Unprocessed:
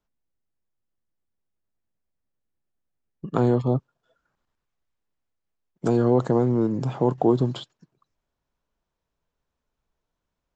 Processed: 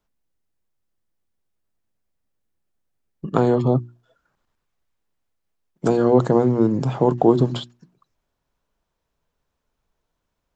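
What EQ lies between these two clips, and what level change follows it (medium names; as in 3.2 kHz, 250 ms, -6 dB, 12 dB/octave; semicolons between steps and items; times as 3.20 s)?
hum notches 60/120/180/240/300/360 Hz; +5.0 dB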